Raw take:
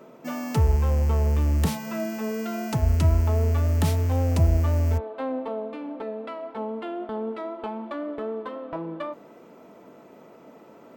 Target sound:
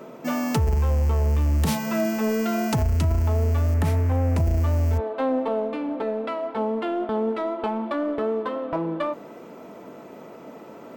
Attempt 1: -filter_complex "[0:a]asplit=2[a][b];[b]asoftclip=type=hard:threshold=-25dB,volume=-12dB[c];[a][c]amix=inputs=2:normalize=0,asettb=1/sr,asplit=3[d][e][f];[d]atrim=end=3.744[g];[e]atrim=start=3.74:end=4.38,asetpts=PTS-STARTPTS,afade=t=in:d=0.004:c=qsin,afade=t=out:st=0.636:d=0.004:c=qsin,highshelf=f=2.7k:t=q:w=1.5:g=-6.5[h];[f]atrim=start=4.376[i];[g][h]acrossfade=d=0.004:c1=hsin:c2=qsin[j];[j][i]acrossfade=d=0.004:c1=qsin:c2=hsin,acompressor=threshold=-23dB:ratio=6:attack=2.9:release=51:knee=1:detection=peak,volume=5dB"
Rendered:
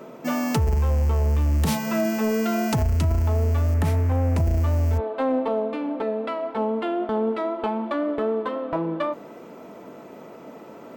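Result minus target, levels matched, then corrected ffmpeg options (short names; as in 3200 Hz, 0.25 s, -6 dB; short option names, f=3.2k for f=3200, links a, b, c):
hard clip: distortion -5 dB
-filter_complex "[0:a]asplit=2[a][b];[b]asoftclip=type=hard:threshold=-34dB,volume=-12dB[c];[a][c]amix=inputs=2:normalize=0,asettb=1/sr,asplit=3[d][e][f];[d]atrim=end=3.744[g];[e]atrim=start=3.74:end=4.38,asetpts=PTS-STARTPTS,afade=t=in:d=0.004:c=qsin,afade=t=out:st=0.636:d=0.004:c=qsin,highshelf=f=2.7k:t=q:w=1.5:g=-6.5[h];[f]atrim=start=4.376[i];[g][h]acrossfade=d=0.004:c1=hsin:c2=qsin[j];[j][i]acrossfade=d=0.004:c1=qsin:c2=hsin,acompressor=threshold=-23dB:ratio=6:attack=2.9:release=51:knee=1:detection=peak,volume=5dB"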